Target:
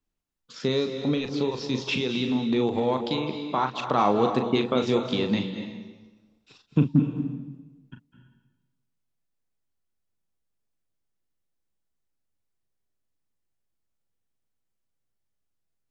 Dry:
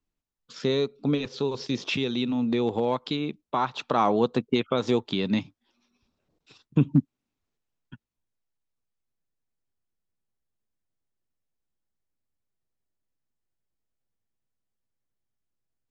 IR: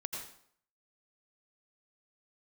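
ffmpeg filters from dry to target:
-filter_complex "[0:a]asplit=2[link_01][link_02];[1:a]atrim=start_sample=2205,asetrate=22050,aresample=44100,adelay=39[link_03];[link_02][link_03]afir=irnorm=-1:irlink=0,volume=-9.5dB[link_04];[link_01][link_04]amix=inputs=2:normalize=0"

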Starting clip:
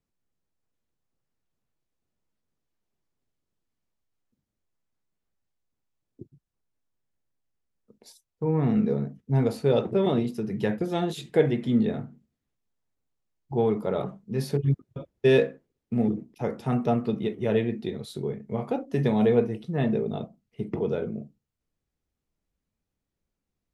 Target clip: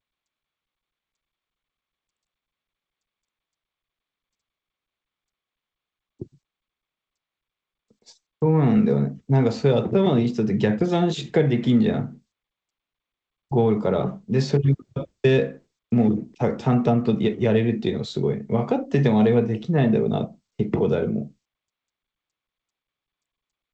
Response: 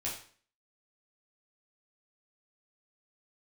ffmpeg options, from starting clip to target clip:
-filter_complex "[0:a]agate=range=-33dB:threshold=-45dB:ratio=3:detection=peak,acrossover=split=220|660[link_01][link_02][link_03];[link_01]acompressor=threshold=-28dB:ratio=4[link_04];[link_02]acompressor=threshold=-31dB:ratio=4[link_05];[link_03]acompressor=threshold=-37dB:ratio=4[link_06];[link_04][link_05][link_06]amix=inputs=3:normalize=0,volume=9dB" -ar 16000 -c:a g722

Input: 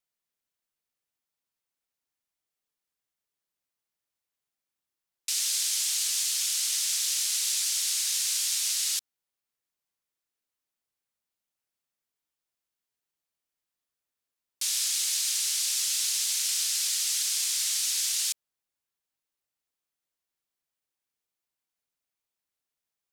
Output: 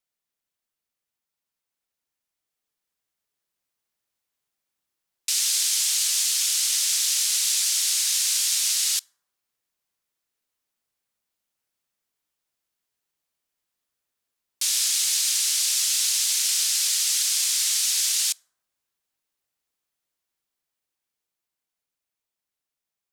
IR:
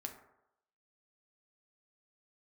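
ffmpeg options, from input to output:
-filter_complex "[0:a]dynaudnorm=framelen=430:gausssize=13:maxgain=4dB,asplit=2[link_01][link_02];[1:a]atrim=start_sample=2205,asetrate=37044,aresample=44100[link_03];[link_02][link_03]afir=irnorm=-1:irlink=0,volume=-14.5dB[link_04];[link_01][link_04]amix=inputs=2:normalize=0"

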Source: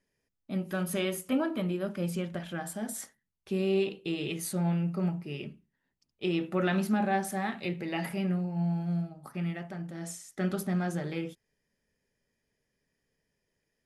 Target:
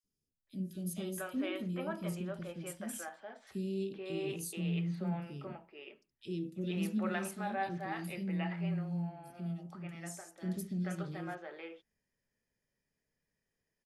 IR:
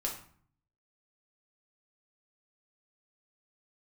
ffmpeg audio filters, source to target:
-filter_complex "[0:a]acrossover=split=390|3600[link_01][link_02][link_03];[link_01]adelay=40[link_04];[link_02]adelay=470[link_05];[link_04][link_05][link_03]amix=inputs=3:normalize=0,volume=-5.5dB"

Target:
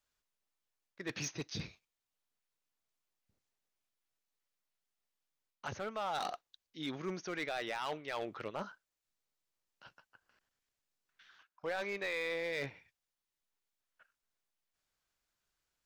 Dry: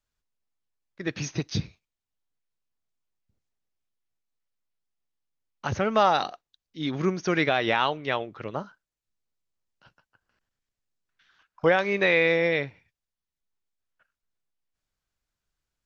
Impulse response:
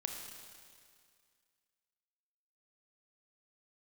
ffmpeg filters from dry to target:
-af "areverse,acompressor=threshold=-33dB:ratio=10,areverse,lowshelf=frequency=240:gain=-10.5,asoftclip=type=hard:threshold=-33dB,volume=1.5dB"

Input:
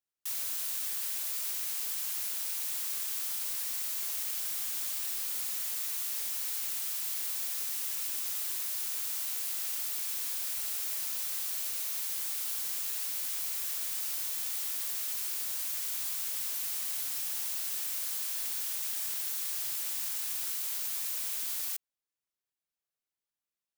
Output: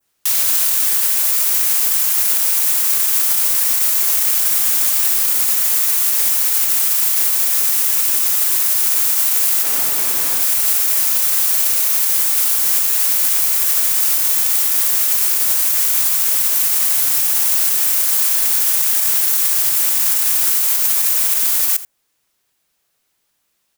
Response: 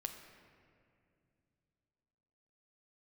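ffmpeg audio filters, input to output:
-filter_complex "[0:a]asettb=1/sr,asplit=3[link_01][link_02][link_03];[link_01]atrim=end=9.634[link_04];[link_02]atrim=start=9.63:end=10.41,asetpts=PTS-STARTPTS,afade=type=in:duration=0.004:curve=qsin,afade=type=out:start_time=0.776:duration=0.004:curve=qsin,tiltshelf=frequency=1100:gain=5.5[link_05];[link_03]atrim=start=10.406[link_06];[link_04][link_05]acrossfade=duration=0.004:curve1=hsin:curve2=qsin[link_07];[link_07][link_06]acrossfade=duration=0.004:curve1=qsin:curve2=hsin,aecho=1:1:84:0.106,adynamicequalizer=threshold=0.00141:dfrequency=3800:dqfactor=0.93:tfrequency=3800:tqfactor=0.93:attack=5:release=100:ratio=0.375:range=2.5:mode=cutabove:tftype=bell,alimiter=level_in=28.5dB:limit=-1dB:release=50:level=0:latency=1,volume=-4.5dB"

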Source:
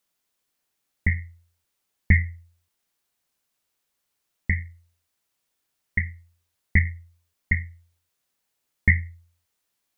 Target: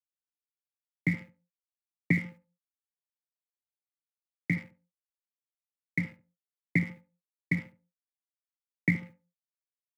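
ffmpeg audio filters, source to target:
ffmpeg -i in.wav -filter_complex "[0:a]afreqshift=90,acrossover=split=820|1900[link_01][link_02][link_03];[link_01]acompressor=threshold=-19dB:ratio=4[link_04];[link_02]acompressor=threshold=-32dB:ratio=4[link_05];[link_03]acompressor=threshold=-28dB:ratio=4[link_06];[link_04][link_05][link_06]amix=inputs=3:normalize=0,aeval=exprs='sgn(val(0))*max(abs(val(0))-0.00794,0)':channel_layout=same,asplit=2[link_07][link_08];[link_08]adelay=71,lowpass=frequency=810:poles=1,volume=-11dB,asplit=2[link_09][link_10];[link_10]adelay=71,lowpass=frequency=810:poles=1,volume=0.29,asplit=2[link_11][link_12];[link_12]adelay=71,lowpass=frequency=810:poles=1,volume=0.29[link_13];[link_09][link_11][link_13]amix=inputs=3:normalize=0[link_14];[link_07][link_14]amix=inputs=2:normalize=0,volume=-3.5dB" out.wav

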